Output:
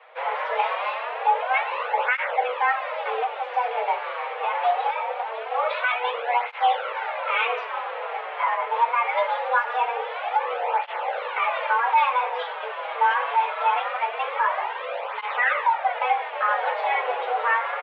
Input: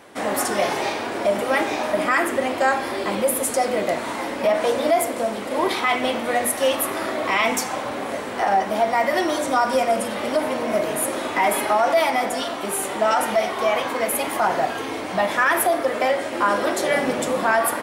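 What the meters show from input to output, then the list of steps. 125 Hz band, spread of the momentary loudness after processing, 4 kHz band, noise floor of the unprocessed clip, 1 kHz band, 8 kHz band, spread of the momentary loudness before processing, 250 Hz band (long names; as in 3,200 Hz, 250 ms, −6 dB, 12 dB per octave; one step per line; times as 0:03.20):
below −40 dB, 7 LU, −6.5 dB, −29 dBFS, +0.5 dB, below −40 dB, 6 LU, below −35 dB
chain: single-sideband voice off tune +240 Hz 180–3,000 Hz
double-tracking delay 18 ms −12 dB
through-zero flanger with one copy inverted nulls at 0.23 Hz, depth 7.4 ms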